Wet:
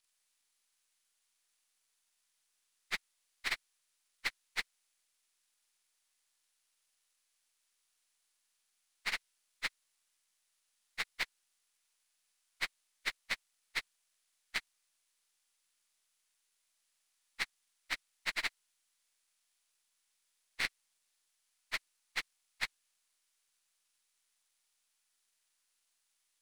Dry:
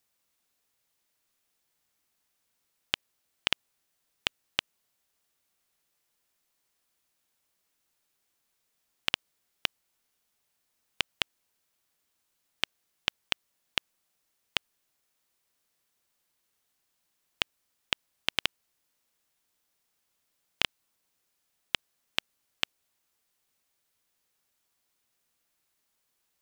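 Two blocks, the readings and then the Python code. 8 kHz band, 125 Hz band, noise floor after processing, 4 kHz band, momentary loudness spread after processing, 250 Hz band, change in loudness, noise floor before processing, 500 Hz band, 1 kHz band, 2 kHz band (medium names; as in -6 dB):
-3.5 dB, -11.5 dB, -80 dBFS, -10.5 dB, 4 LU, -10.5 dB, -6.0 dB, -78 dBFS, -10.0 dB, -5.5 dB, -2.0 dB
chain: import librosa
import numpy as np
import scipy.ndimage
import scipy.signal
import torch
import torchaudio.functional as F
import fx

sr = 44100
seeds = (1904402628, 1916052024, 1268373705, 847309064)

y = fx.partial_stretch(x, sr, pct=85)
y = np.maximum(y, 0.0)
y = fx.tilt_shelf(y, sr, db=-7.5, hz=770.0)
y = F.gain(torch.from_numpy(y), -3.0).numpy()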